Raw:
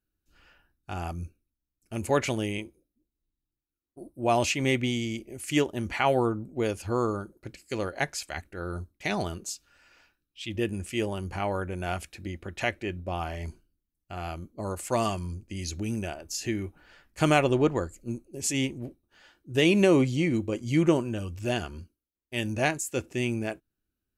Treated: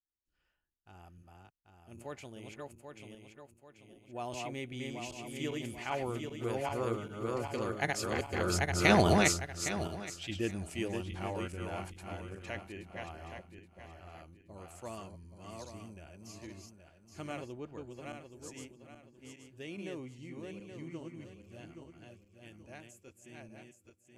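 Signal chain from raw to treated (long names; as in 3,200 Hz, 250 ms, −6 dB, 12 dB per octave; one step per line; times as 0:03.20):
feedback delay that plays each chunk backwards 403 ms, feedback 58%, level −2.5 dB
source passing by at 0:09.06, 8 m/s, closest 3.3 metres
level +5 dB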